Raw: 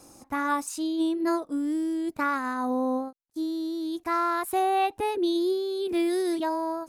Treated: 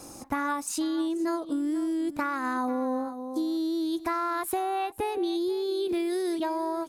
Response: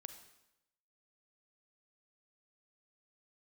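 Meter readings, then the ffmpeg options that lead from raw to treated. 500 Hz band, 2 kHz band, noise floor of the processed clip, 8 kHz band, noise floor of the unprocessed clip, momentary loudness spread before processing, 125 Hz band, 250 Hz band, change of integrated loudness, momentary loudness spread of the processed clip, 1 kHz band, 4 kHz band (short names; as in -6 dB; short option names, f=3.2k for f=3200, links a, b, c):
-1.5 dB, -2.0 dB, -44 dBFS, +2.0 dB, -62 dBFS, 6 LU, n/a, -1.0 dB, -1.5 dB, 2 LU, -3.0 dB, -1.5 dB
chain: -af "aecho=1:1:484:0.141,acompressor=threshold=-33dB:ratio=10,volume=7dB"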